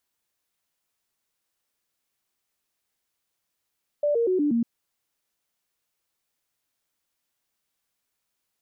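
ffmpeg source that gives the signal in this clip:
ffmpeg -f lavfi -i "aevalsrc='0.106*clip(min(mod(t,0.12),0.12-mod(t,0.12))/0.005,0,1)*sin(2*PI*587*pow(2,-floor(t/0.12)/3)*mod(t,0.12))':duration=0.6:sample_rate=44100" out.wav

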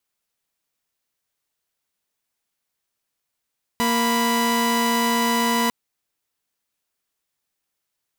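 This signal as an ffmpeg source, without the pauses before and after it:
ffmpeg -f lavfi -i "aevalsrc='0.119*((2*mod(233.08*t,1)-1)+(2*mod(987.77*t,1)-1))':duration=1.9:sample_rate=44100" out.wav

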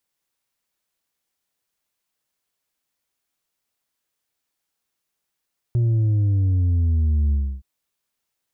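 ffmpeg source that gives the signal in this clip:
ffmpeg -f lavfi -i "aevalsrc='0.15*clip((1.87-t)/0.3,0,1)*tanh(1.58*sin(2*PI*120*1.87/log(65/120)*(exp(log(65/120)*t/1.87)-1)))/tanh(1.58)':duration=1.87:sample_rate=44100" out.wav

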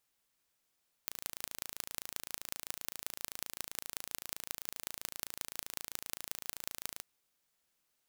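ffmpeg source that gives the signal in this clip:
ffmpeg -f lavfi -i "aevalsrc='0.376*eq(mod(n,1592),0)*(0.5+0.5*eq(mod(n,7960),0))':duration=5.94:sample_rate=44100" out.wav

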